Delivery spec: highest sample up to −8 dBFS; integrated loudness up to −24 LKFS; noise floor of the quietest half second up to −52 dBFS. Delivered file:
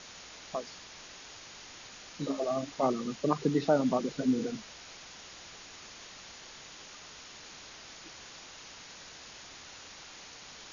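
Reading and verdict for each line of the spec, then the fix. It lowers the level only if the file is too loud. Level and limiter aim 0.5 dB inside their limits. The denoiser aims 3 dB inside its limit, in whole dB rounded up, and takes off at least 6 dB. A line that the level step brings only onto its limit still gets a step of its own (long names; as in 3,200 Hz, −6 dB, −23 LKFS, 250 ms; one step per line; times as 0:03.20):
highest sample −13.5 dBFS: in spec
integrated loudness −31.5 LKFS: in spec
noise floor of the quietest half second −49 dBFS: out of spec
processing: broadband denoise 6 dB, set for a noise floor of −49 dBFS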